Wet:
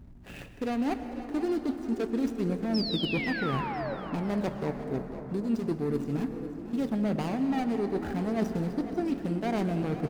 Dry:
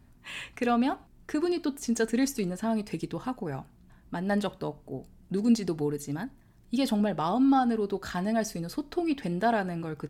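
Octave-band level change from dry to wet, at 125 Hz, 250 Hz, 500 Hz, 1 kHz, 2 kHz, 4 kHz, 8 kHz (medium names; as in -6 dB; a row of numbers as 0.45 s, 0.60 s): +2.5 dB, -1.0 dB, -1.0 dB, -4.5 dB, -1.0 dB, +2.5 dB, under -10 dB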